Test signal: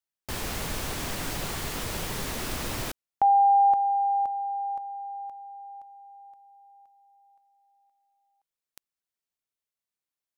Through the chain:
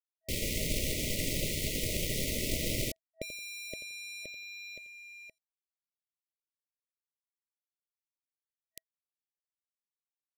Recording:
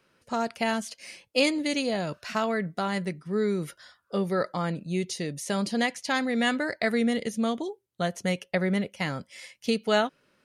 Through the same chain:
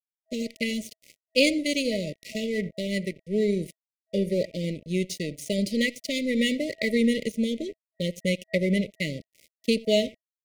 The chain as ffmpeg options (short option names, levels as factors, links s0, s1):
-filter_complex "[0:a]asplit=2[s0][s1];[s1]adelay=86,lowpass=f=950:p=1,volume=0.224,asplit=2[s2][s3];[s3]adelay=86,lowpass=f=950:p=1,volume=0.21[s4];[s0][s2][s4]amix=inputs=3:normalize=0,aeval=exprs='sgn(val(0))*max(abs(val(0))-0.0119,0)':c=same,afftfilt=real='re*(1-between(b*sr/4096,650,1900))':imag='im*(1-between(b*sr/4096,650,1900))':win_size=4096:overlap=0.75,volume=1.5"